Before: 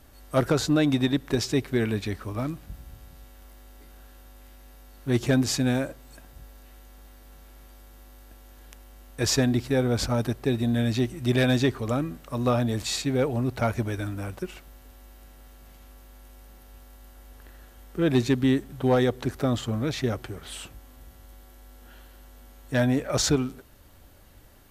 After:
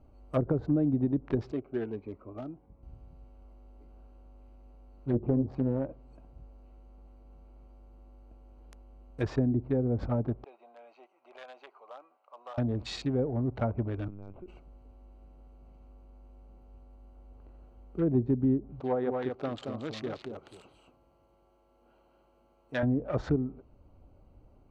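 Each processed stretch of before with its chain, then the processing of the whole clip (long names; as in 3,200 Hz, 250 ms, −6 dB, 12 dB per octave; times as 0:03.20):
0:01.52–0:02.83: three-way crossover with the lows and the highs turned down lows −13 dB, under 290 Hz, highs −22 dB, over 2,300 Hz + phaser whose notches keep moving one way rising 1.5 Hz
0:05.11–0:05.88: high-shelf EQ 2,200 Hz −11.5 dB + double-tracking delay 22 ms −12 dB + highs frequency-modulated by the lows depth 0.61 ms
0:10.44–0:12.58: high-pass filter 760 Hz 24 dB per octave + downward compressor 2 to 1, threshold −33 dBFS + head-to-tape spacing loss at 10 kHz 22 dB
0:14.08–0:14.48: downward compressor 4 to 1, threshold −38 dBFS + linear-prediction vocoder at 8 kHz pitch kept
0:18.80–0:22.83: high-pass filter 510 Hz 6 dB per octave + single-tap delay 226 ms −4.5 dB
whole clip: adaptive Wiener filter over 25 samples; high-shelf EQ 7,900 Hz −7 dB; treble cut that deepens with the level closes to 460 Hz, closed at −19 dBFS; level −3.5 dB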